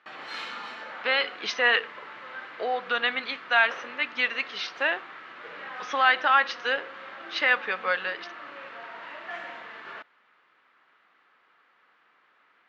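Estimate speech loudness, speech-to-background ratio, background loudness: -25.5 LUFS, 15.0 dB, -40.5 LUFS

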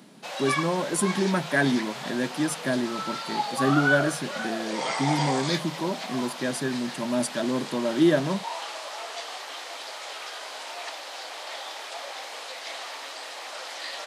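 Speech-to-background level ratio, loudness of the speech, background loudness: 5.0 dB, -27.5 LUFS, -32.5 LUFS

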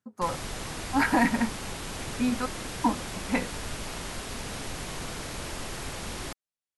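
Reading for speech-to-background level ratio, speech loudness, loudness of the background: 7.5 dB, -28.5 LUFS, -36.0 LUFS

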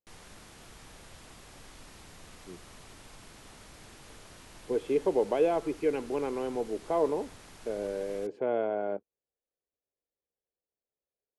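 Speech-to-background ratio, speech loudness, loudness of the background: 20.0 dB, -31.0 LUFS, -51.0 LUFS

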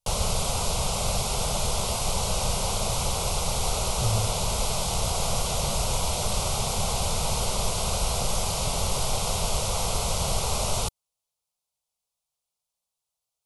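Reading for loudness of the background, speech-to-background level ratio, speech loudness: -26.5 LUFS, -5.0 dB, -31.5 LUFS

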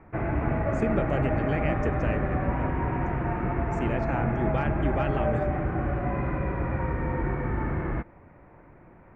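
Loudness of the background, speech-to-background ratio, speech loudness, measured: -28.5 LUFS, -4.0 dB, -32.5 LUFS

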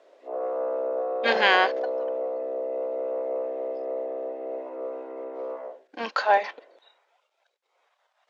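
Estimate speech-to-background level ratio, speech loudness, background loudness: 7.5 dB, -23.5 LUFS, -31.0 LUFS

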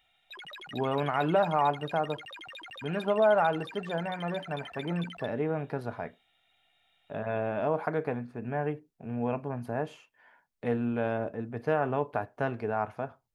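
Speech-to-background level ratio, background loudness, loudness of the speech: 13.0 dB, -44.0 LUFS, -31.0 LUFS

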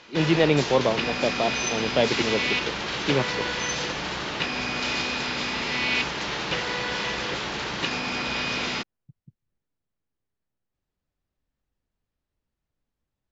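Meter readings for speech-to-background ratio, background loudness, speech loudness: 1.0 dB, -26.5 LUFS, -25.5 LUFS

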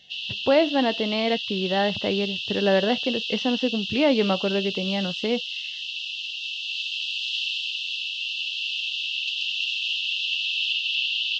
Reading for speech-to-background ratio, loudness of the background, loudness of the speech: 2.5 dB, -27.0 LUFS, -24.5 LUFS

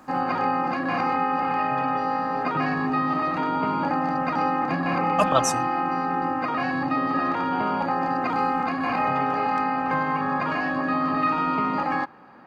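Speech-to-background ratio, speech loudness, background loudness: -1.0 dB, -25.5 LUFS, -24.5 LUFS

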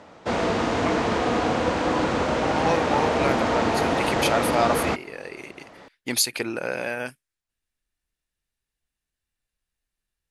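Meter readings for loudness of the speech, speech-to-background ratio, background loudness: -27.5 LUFS, -4.0 dB, -23.5 LUFS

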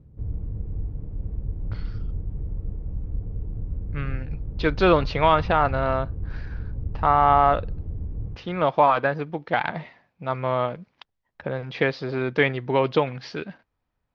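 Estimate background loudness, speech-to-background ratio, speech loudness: -33.5 LUFS, 10.5 dB, -23.0 LUFS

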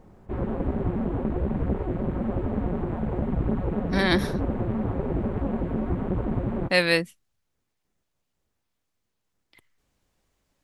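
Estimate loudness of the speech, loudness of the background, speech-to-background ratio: -24.0 LUFS, -28.5 LUFS, 4.5 dB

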